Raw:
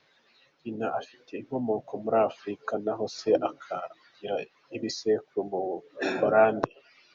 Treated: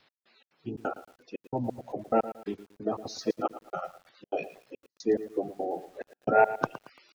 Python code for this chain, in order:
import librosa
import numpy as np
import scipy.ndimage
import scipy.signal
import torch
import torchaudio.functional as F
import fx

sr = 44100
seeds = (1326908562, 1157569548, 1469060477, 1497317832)

y = fx.spec_quant(x, sr, step_db=30)
y = fx.step_gate(y, sr, bpm=177, pattern='x..xx.xxx.x...x', floor_db=-60.0, edge_ms=4.5)
y = fx.echo_crushed(y, sr, ms=113, feedback_pct=35, bits=8, wet_db=-14)